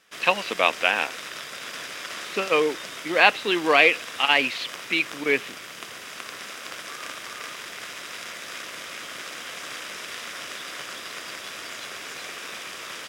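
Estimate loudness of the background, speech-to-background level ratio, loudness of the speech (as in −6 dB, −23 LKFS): −35.0 LKFS, 13.5 dB, −21.5 LKFS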